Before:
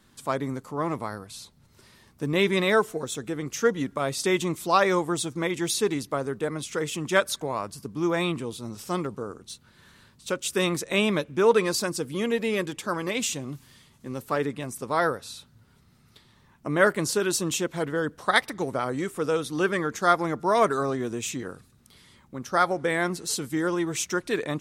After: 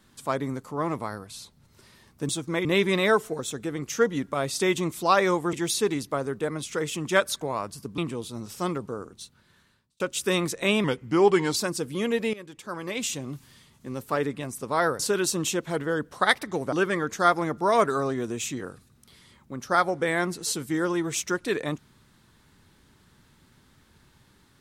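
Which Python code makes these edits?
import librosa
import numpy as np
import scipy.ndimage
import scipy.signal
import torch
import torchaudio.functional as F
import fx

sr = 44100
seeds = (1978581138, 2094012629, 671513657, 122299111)

y = fx.edit(x, sr, fx.move(start_s=5.17, length_s=0.36, to_s=2.29),
    fx.cut(start_s=7.98, length_s=0.29),
    fx.fade_out_span(start_s=9.32, length_s=0.97),
    fx.speed_span(start_s=11.13, length_s=0.63, speed=0.87),
    fx.fade_in_from(start_s=12.53, length_s=0.92, floor_db=-19.0),
    fx.cut(start_s=15.19, length_s=1.87),
    fx.cut(start_s=18.79, length_s=0.76), tone=tone)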